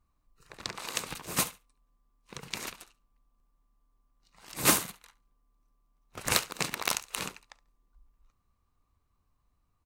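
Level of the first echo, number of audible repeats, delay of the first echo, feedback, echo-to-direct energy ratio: -20.0 dB, 2, 70 ms, 19%, -20.0 dB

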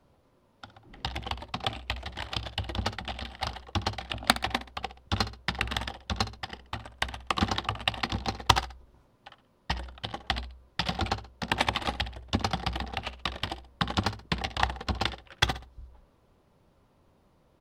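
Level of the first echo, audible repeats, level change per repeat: -15.5 dB, 2, -8.5 dB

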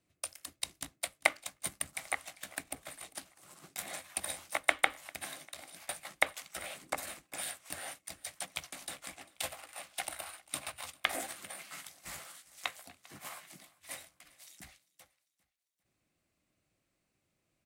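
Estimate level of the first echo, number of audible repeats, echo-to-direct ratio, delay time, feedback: -23.0 dB, 2, -22.0 dB, 397 ms, 46%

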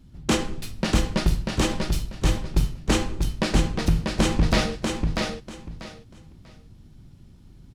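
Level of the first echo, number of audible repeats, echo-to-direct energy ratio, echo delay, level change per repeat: -4.0 dB, 3, -4.0 dB, 641 ms, -13.0 dB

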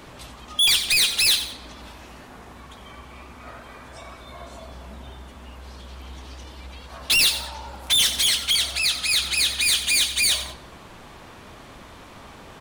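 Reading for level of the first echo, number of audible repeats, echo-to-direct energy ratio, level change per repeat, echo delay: -12.0 dB, 2, -11.5 dB, -9.5 dB, 91 ms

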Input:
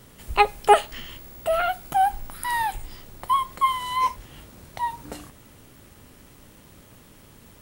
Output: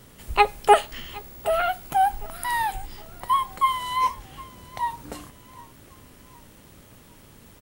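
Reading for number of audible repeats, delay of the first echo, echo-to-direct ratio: 2, 762 ms, -20.5 dB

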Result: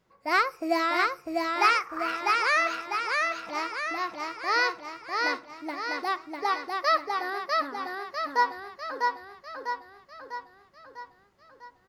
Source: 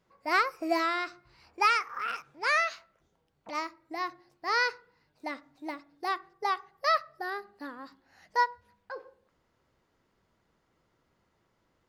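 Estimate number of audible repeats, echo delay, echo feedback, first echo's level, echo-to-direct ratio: 6, 649 ms, 54%, -3.0 dB, -1.5 dB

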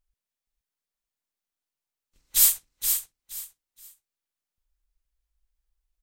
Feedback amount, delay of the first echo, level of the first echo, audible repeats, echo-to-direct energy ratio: 24%, 473 ms, -6.5 dB, 3, -6.0 dB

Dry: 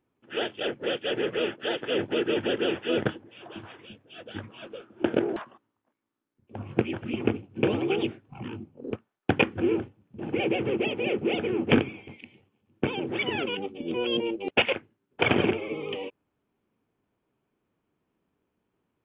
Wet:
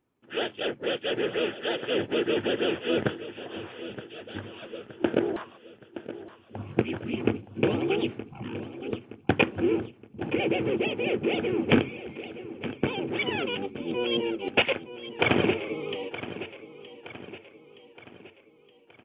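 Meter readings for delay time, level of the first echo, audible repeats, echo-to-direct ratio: 920 ms, -13.5 dB, 4, -12.5 dB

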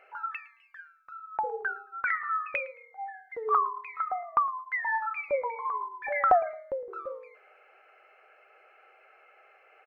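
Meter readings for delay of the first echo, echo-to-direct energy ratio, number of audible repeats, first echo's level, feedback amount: 110 ms, -21.0 dB, 2, -21.0 dB, 24%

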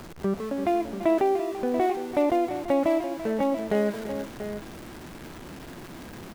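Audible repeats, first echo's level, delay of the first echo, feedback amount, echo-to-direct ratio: 3, -19.0 dB, 97 ms, no regular repeats, -8.0 dB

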